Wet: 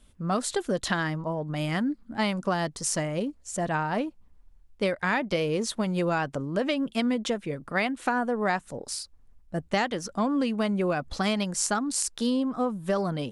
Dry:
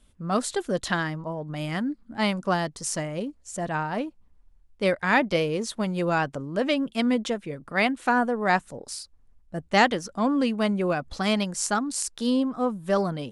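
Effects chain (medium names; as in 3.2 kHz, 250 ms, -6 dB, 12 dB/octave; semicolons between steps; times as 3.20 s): compression 10:1, threshold -24 dBFS, peak gain reduction 11 dB; trim +2 dB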